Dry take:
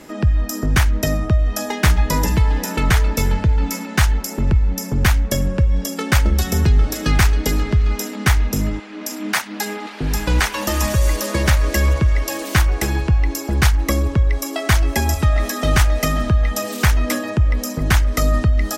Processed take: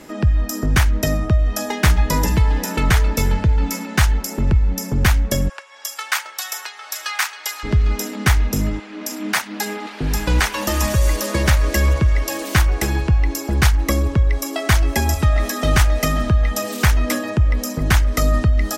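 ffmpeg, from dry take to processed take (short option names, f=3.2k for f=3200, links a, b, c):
-filter_complex "[0:a]asplit=3[a][b][c];[a]afade=t=out:st=5.48:d=0.02[d];[b]highpass=f=870:w=0.5412,highpass=f=870:w=1.3066,afade=t=in:st=5.48:d=0.02,afade=t=out:st=7.63:d=0.02[e];[c]afade=t=in:st=7.63:d=0.02[f];[d][e][f]amix=inputs=3:normalize=0"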